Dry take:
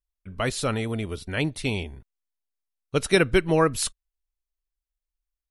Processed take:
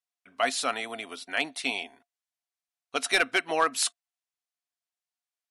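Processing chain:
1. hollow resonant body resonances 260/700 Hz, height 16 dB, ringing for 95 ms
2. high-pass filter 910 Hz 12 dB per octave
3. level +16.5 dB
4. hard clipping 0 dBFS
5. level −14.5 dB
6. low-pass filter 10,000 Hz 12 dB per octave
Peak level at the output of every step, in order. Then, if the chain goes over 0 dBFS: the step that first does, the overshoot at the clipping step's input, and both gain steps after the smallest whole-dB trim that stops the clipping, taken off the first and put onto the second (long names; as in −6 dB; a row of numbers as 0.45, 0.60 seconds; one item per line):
−3.5, −9.5, +7.0, 0.0, −14.5, −13.5 dBFS
step 3, 7.0 dB
step 3 +9.5 dB, step 5 −7.5 dB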